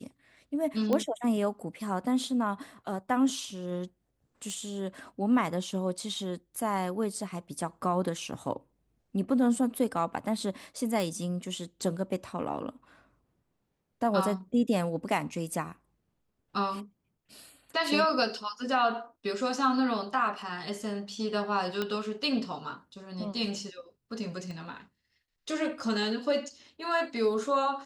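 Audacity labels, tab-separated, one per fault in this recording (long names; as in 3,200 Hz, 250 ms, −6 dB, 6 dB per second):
0.930000	0.930000	click −16 dBFS
4.500000	4.500000	click −25 dBFS
11.000000	11.000000	click
21.820000	21.820000	click −17 dBFS
24.510000	24.510000	click −30 dBFS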